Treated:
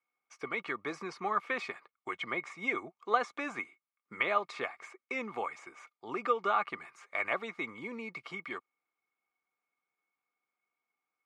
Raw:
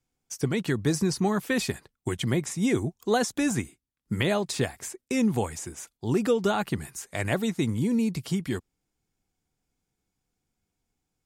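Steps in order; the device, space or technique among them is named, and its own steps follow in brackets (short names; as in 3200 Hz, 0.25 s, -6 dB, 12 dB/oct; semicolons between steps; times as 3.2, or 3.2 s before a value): tin-can telephone (BPF 590–2400 Hz; small resonant body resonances 1200/2200 Hz, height 17 dB, ringing for 35 ms); gain -4 dB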